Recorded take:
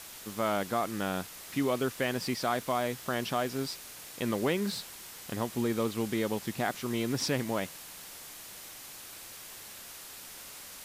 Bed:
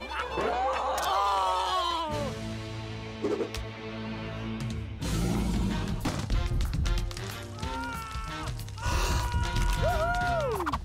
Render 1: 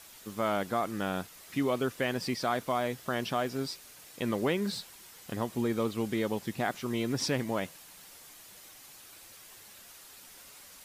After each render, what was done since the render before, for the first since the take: denoiser 7 dB, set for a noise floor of -47 dBFS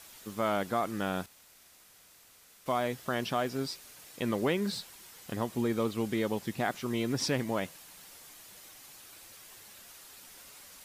1.26–2.66 room tone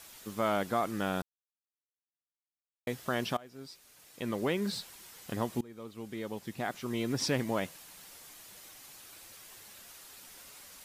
1.22–2.87 mute; 3.37–4.82 fade in, from -23.5 dB; 5.61–7.34 fade in, from -24 dB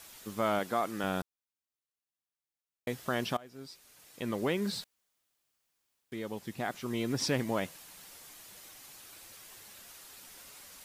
0.59–1.04 HPF 220 Hz 6 dB/oct; 4.84–6.12 room tone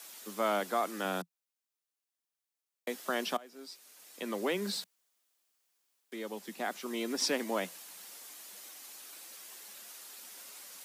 steep high-pass 170 Hz 96 dB/oct; tone controls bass -7 dB, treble +3 dB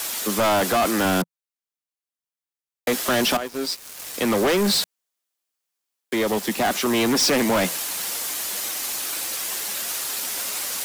sample leveller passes 5; in parallel at -2 dB: limiter -26 dBFS, peak gain reduction 7.5 dB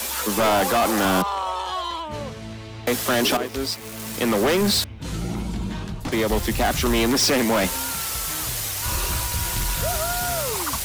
add bed +0.5 dB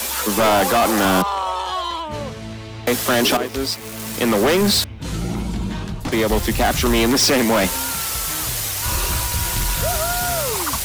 gain +3.5 dB

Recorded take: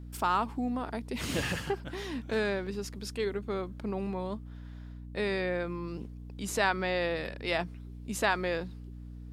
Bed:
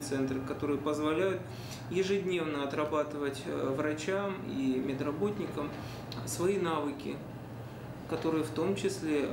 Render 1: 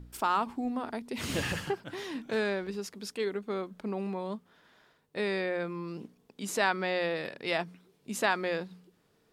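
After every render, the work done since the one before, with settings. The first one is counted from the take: de-hum 60 Hz, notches 5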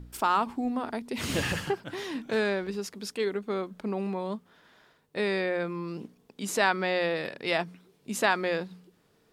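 gain +3 dB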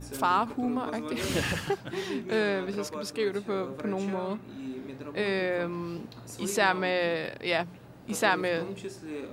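add bed -7 dB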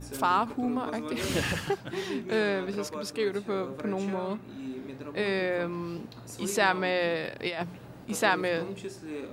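7.38–8.05 negative-ratio compressor -30 dBFS, ratio -0.5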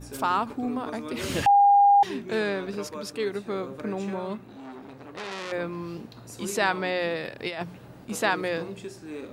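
1.46–2.03 bleep 807 Hz -13.5 dBFS; 4.44–5.52 core saturation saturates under 3600 Hz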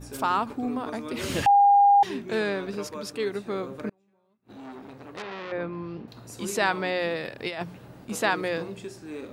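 3.89–4.5 flipped gate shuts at -31 dBFS, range -37 dB; 5.22–6.08 air absorption 260 m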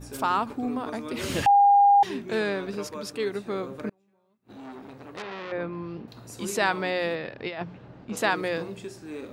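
7.15–8.17 air absorption 170 m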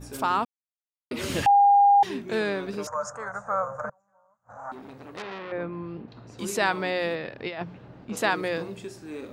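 0.45–1.11 mute; 2.87–4.72 EQ curve 140 Hz 0 dB, 370 Hz -29 dB, 530 Hz +7 dB, 1400 Hz +13 dB, 2700 Hz -24 dB, 4000 Hz -27 dB, 6700 Hz +8 dB, 12000 Hz -23 dB; 5.38–6.39 air absorption 180 m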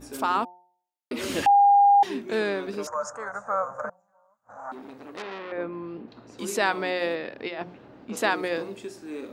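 resonant low shelf 190 Hz -7.5 dB, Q 1.5; de-hum 179.1 Hz, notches 5

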